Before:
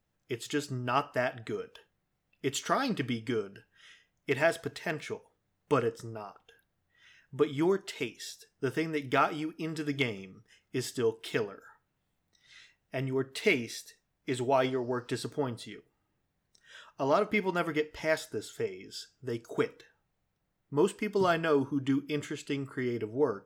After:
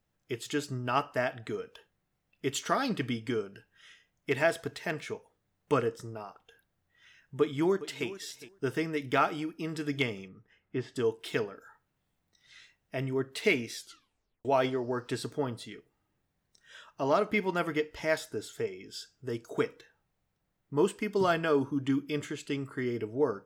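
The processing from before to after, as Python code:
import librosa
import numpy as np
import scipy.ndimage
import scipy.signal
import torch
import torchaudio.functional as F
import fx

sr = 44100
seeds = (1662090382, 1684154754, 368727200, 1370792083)

y = fx.echo_throw(x, sr, start_s=7.39, length_s=0.68, ms=410, feedback_pct=10, wet_db=-15.5)
y = fx.lowpass(y, sr, hz=2200.0, slope=12, at=(10.28, 10.96))
y = fx.edit(y, sr, fx.tape_stop(start_s=13.75, length_s=0.7), tone=tone)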